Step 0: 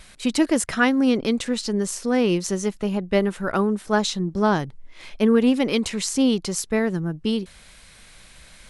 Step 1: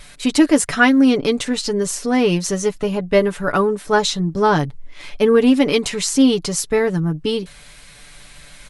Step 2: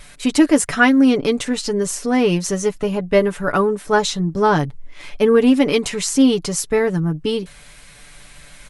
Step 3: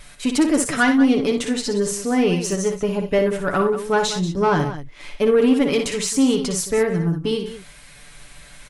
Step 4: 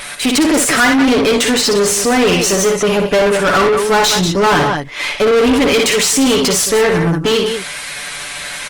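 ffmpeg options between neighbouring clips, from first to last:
-af "aecho=1:1:6.9:0.61,volume=1.58"
-af "equalizer=f=4100:t=o:w=0.8:g=-3"
-filter_complex "[0:a]asoftclip=type=tanh:threshold=0.422,asplit=2[s0][s1];[s1]aecho=0:1:59|91|185:0.447|0.106|0.237[s2];[s0][s2]amix=inputs=2:normalize=0,volume=0.794"
-filter_complex "[0:a]asplit=2[s0][s1];[s1]highpass=f=720:p=1,volume=22.4,asoftclip=type=tanh:threshold=0.447[s2];[s0][s2]amix=inputs=2:normalize=0,lowpass=f=7800:p=1,volume=0.501,volume=1.19" -ar 48000 -c:a libopus -b:a 32k

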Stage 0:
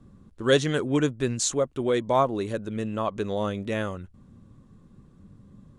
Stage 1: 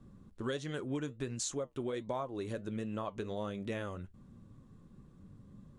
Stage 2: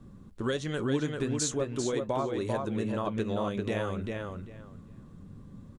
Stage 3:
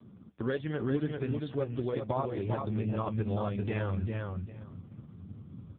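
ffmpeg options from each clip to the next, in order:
-af "acompressor=threshold=0.0316:ratio=6,flanger=delay=5:depth=3.1:regen=-75:speed=1.4:shape=triangular"
-filter_complex "[0:a]asplit=2[s0][s1];[s1]adelay=394,lowpass=f=4700:p=1,volume=0.668,asplit=2[s2][s3];[s3]adelay=394,lowpass=f=4700:p=1,volume=0.19,asplit=2[s4][s5];[s5]adelay=394,lowpass=f=4700:p=1,volume=0.19[s6];[s0][s2][s4][s6]amix=inputs=4:normalize=0,volume=2"
-af "asubboost=boost=6:cutoff=110" -ar 8000 -c:a libopencore_amrnb -b:a 4750

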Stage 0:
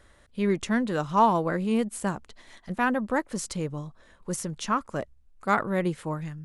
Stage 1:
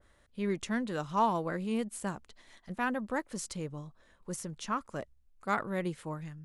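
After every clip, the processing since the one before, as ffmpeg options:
-af "adynamicequalizer=threshold=0.0178:dfrequency=2000:dqfactor=0.7:tfrequency=2000:tqfactor=0.7:attack=5:release=100:ratio=0.375:range=1.5:mode=boostabove:tftype=highshelf,volume=0.422"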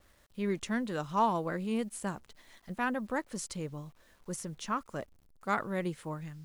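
-af "acrusher=bits=10:mix=0:aa=0.000001"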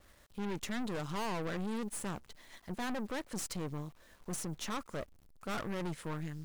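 -af "aeval=exprs='(tanh(126*val(0)+0.75)-tanh(0.75))/126':c=same,volume=2.11"

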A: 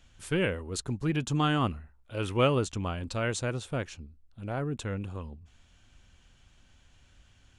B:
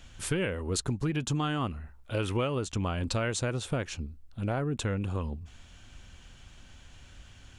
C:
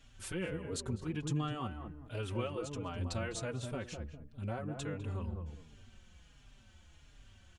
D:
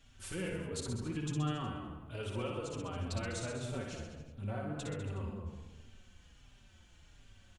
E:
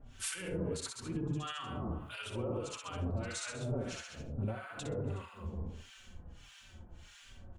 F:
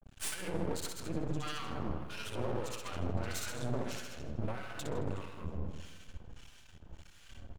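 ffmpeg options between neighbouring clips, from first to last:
-af "acompressor=threshold=0.0178:ratio=10,volume=2.66"
-filter_complex "[0:a]asplit=2[s0][s1];[s1]adelay=203,lowpass=f=820:p=1,volume=0.631,asplit=2[s2][s3];[s3]adelay=203,lowpass=f=820:p=1,volume=0.34,asplit=2[s4][s5];[s5]adelay=203,lowpass=f=820:p=1,volume=0.34,asplit=2[s6][s7];[s7]adelay=203,lowpass=f=820:p=1,volume=0.34[s8];[s2][s4][s6][s8]amix=inputs=4:normalize=0[s9];[s0][s9]amix=inputs=2:normalize=0,asplit=2[s10][s11];[s11]adelay=4.5,afreqshift=-1.4[s12];[s10][s12]amix=inputs=2:normalize=1,volume=0.501"
-filter_complex "[0:a]bandreject=f=70.45:t=h:w=4,bandreject=f=140.9:t=h:w=4,bandreject=f=211.35:t=h:w=4,bandreject=f=281.8:t=h:w=4,bandreject=f=352.25:t=h:w=4,bandreject=f=422.7:t=h:w=4,bandreject=f=493.15:t=h:w=4,bandreject=f=563.6:t=h:w=4,bandreject=f=634.05:t=h:w=4,bandreject=f=704.5:t=h:w=4,bandreject=f=774.95:t=h:w=4,bandreject=f=845.4:t=h:w=4,bandreject=f=915.85:t=h:w=4,bandreject=f=986.3:t=h:w=4,bandreject=f=1056.75:t=h:w=4,bandreject=f=1127.2:t=h:w=4,bandreject=f=1197.65:t=h:w=4,bandreject=f=1268.1:t=h:w=4,bandreject=f=1338.55:t=h:w=4,bandreject=f=1409:t=h:w=4,bandreject=f=1479.45:t=h:w=4,bandreject=f=1549.9:t=h:w=4,bandreject=f=1620.35:t=h:w=4,bandreject=f=1690.8:t=h:w=4,bandreject=f=1761.25:t=h:w=4,bandreject=f=1831.7:t=h:w=4,bandreject=f=1902.15:t=h:w=4,bandreject=f=1972.6:t=h:w=4,bandreject=f=2043.05:t=h:w=4,bandreject=f=2113.5:t=h:w=4,bandreject=f=2183.95:t=h:w=4,bandreject=f=2254.4:t=h:w=4,bandreject=f=2324.85:t=h:w=4,bandreject=f=2395.3:t=h:w=4,bandreject=f=2465.75:t=h:w=4,bandreject=f=2536.2:t=h:w=4,bandreject=f=2606.65:t=h:w=4,asplit=2[s0][s1];[s1]aecho=0:1:60|126|198.6|278.5|366.3:0.631|0.398|0.251|0.158|0.1[s2];[s0][s2]amix=inputs=2:normalize=0,volume=0.794"
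-filter_complex "[0:a]bandreject=f=50:t=h:w=6,bandreject=f=100:t=h:w=6,bandreject=f=150:t=h:w=6,bandreject=f=200:t=h:w=6,bandreject=f=250:t=h:w=6,bandreject=f=300:t=h:w=6,alimiter=level_in=4.47:limit=0.0631:level=0:latency=1:release=173,volume=0.224,acrossover=split=1000[s0][s1];[s0]aeval=exprs='val(0)*(1-1/2+1/2*cos(2*PI*1.6*n/s))':c=same[s2];[s1]aeval=exprs='val(0)*(1-1/2-1/2*cos(2*PI*1.6*n/s))':c=same[s3];[s2][s3]amix=inputs=2:normalize=0,volume=3.76"
-filter_complex "[0:a]aeval=exprs='max(val(0),0)':c=same,agate=range=0.0224:threshold=0.002:ratio=3:detection=peak,asplit=2[s0][s1];[s1]adelay=159,lowpass=f=4700:p=1,volume=0.224,asplit=2[s2][s3];[s3]adelay=159,lowpass=f=4700:p=1,volume=0.52,asplit=2[s4][s5];[s5]adelay=159,lowpass=f=4700:p=1,volume=0.52,asplit=2[s6][s7];[s7]adelay=159,lowpass=f=4700:p=1,volume=0.52,asplit=2[s8][s9];[s9]adelay=159,lowpass=f=4700:p=1,volume=0.52[s10];[s0][s2][s4][s6][s8][s10]amix=inputs=6:normalize=0,volume=1.68"

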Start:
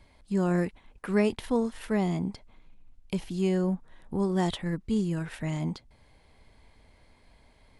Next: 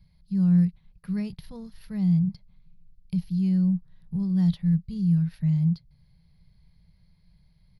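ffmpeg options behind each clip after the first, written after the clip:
-af "firequalizer=gain_entry='entry(100,0);entry(170,12);entry(250,-21);entry(500,-18);entry(740,-19);entry(1900,-14);entry(3200,-13);entry(4500,-2);entry(7900,-28);entry(11000,-4)':delay=0.05:min_phase=1"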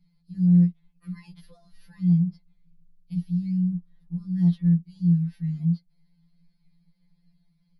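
-af "afftfilt=real='re*2.83*eq(mod(b,8),0)':imag='im*2.83*eq(mod(b,8),0)':win_size=2048:overlap=0.75,volume=0.631"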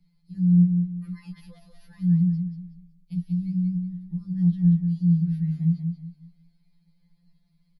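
-filter_complex "[0:a]acrossover=split=300[s0][s1];[s1]acompressor=threshold=0.00398:ratio=6[s2];[s0][s2]amix=inputs=2:normalize=0,aecho=1:1:186|372|558|744:0.501|0.155|0.0482|0.0149"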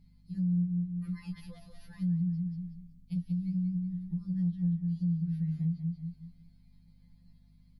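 -af "acompressor=threshold=0.0282:ratio=3,aeval=exprs='val(0)+0.001*(sin(2*PI*50*n/s)+sin(2*PI*2*50*n/s)/2+sin(2*PI*3*50*n/s)/3+sin(2*PI*4*50*n/s)/4+sin(2*PI*5*50*n/s)/5)':c=same"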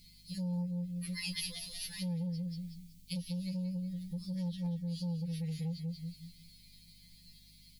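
-af "aeval=exprs='0.075*(cos(1*acos(clip(val(0)/0.075,-1,1)))-cos(1*PI/2))+0.00841*(cos(5*acos(clip(val(0)/0.075,-1,1)))-cos(5*PI/2))':c=same,aexciter=amount=12.9:drive=5.4:freq=2100,volume=0.473"

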